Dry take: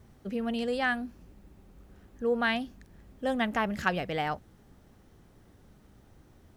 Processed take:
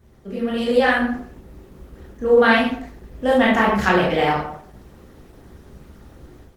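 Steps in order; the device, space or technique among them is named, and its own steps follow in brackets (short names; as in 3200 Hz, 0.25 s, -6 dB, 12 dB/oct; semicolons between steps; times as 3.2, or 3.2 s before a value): speakerphone in a meeting room (reverb RT60 0.55 s, pre-delay 18 ms, DRR -5.5 dB; AGC gain up to 8 dB; Opus 16 kbps 48000 Hz)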